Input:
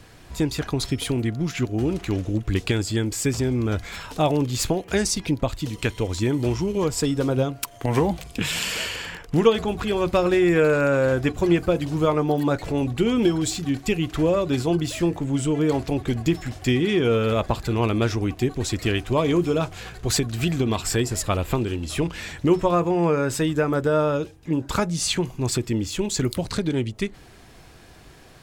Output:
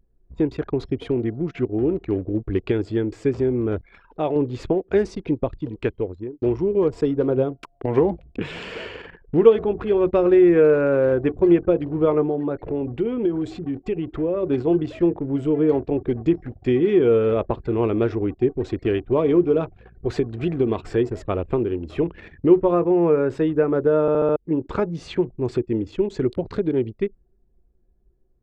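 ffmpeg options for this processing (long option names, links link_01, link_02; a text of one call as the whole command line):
ffmpeg -i in.wav -filter_complex "[0:a]asettb=1/sr,asplit=3[link_01][link_02][link_03];[link_01]atrim=end=3.814[link_04];[link_02]atrim=start=3.81:end=4.36,asetpts=PTS-STARTPTS,afade=type=in:duration=0.004:curve=qsin,afade=type=out:start_time=0.546:duration=0.004:curve=qsin,lowshelf=frequency=480:gain=-6.5[link_05];[link_03]atrim=start=4.356[link_06];[link_04][link_05]acrossfade=duration=0.004:curve1=hsin:curve2=qsin[link_07];[link_07][link_06]acrossfade=duration=0.004:curve1=qsin:curve2=hsin,asettb=1/sr,asplit=3[link_08][link_09][link_10];[link_08]atrim=end=12.284[link_11];[link_09]atrim=start=12.28:end=14.43,asetpts=PTS-STARTPTS,afade=type=in:duration=0.004:curve=qsin,afade=type=out:start_time=2.146:duration=0.004:curve=qsin,acompressor=threshold=-23dB:ratio=2.5:attack=3.2:release=140:knee=1:detection=peak[link_12];[link_10]atrim=start=14.426[link_13];[link_11][link_12]acrossfade=duration=0.004:curve1=hsin:curve2=qsin[link_14];[link_14][link_13]acrossfade=duration=0.004:curve1=qsin:curve2=hsin,asplit=7[link_15][link_16][link_17][link_18][link_19][link_20][link_21];[link_15]atrim=end=6.42,asetpts=PTS-STARTPTS,afade=type=out:start_time=5.88:duration=0.54[link_22];[link_16]atrim=start=6.42:end=24.082,asetpts=PTS-STARTPTS,afade=type=in:duration=0.004:curve=hsin[link_23];[link_17]atrim=start=24.008:end=24.082[link_24];[link_18]atrim=start=24.008:end=24.082[link_25];[link_19]atrim=start=24.008:end=24.082[link_26];[link_20]atrim=start=24.008:end=24.082[link_27];[link_21]atrim=start=24.358[link_28];[link_22][link_23]concat=n=2:v=0:a=1[link_29];[link_29][link_24]acrossfade=duration=0.004:curve1=hsin:curve2=hsin[link_30];[link_30][link_25]acrossfade=duration=0.004:curve1=hsin:curve2=hsin[link_31];[link_31][link_26]acrossfade=duration=0.004:curve1=hsin:curve2=hsin[link_32];[link_32][link_27]acrossfade=duration=0.004:curve1=hsin:curve2=hsin[link_33];[link_33][link_28]acrossfade=duration=0.004:curve1=hsin:curve2=hsin,anlmdn=15.8,lowpass=2300,equalizer=frequency=400:width=1.4:gain=11,volume=-4.5dB" out.wav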